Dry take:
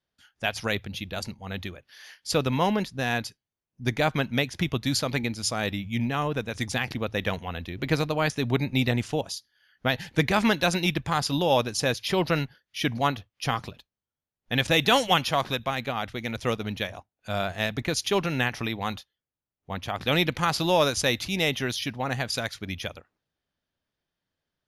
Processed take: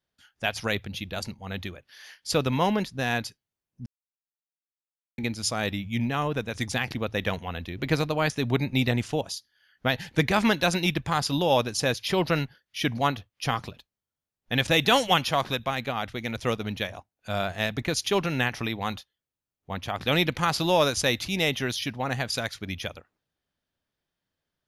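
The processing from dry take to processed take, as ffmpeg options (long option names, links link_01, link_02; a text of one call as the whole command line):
ffmpeg -i in.wav -filter_complex "[0:a]asplit=3[link_01][link_02][link_03];[link_01]atrim=end=3.86,asetpts=PTS-STARTPTS,afade=type=out:start_time=3.856:duration=0.004:curve=hsin[link_04];[link_02]atrim=start=3.86:end=5.18,asetpts=PTS-STARTPTS,volume=0[link_05];[link_03]atrim=start=5.18,asetpts=PTS-STARTPTS,afade=type=in:duration=0.004:curve=hsin[link_06];[link_04][link_05][link_06]concat=n=3:v=0:a=1" out.wav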